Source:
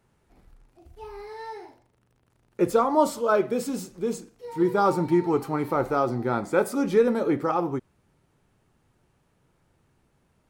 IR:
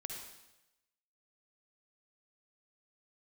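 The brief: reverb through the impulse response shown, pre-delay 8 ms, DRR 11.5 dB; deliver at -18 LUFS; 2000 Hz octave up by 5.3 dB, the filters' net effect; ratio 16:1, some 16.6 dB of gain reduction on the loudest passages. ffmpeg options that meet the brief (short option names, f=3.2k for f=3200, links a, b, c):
-filter_complex "[0:a]equalizer=f=2k:t=o:g=8,acompressor=threshold=-31dB:ratio=16,asplit=2[a][b];[1:a]atrim=start_sample=2205,adelay=8[c];[b][c]afir=irnorm=-1:irlink=0,volume=-10dB[d];[a][d]amix=inputs=2:normalize=0,volume=18.5dB"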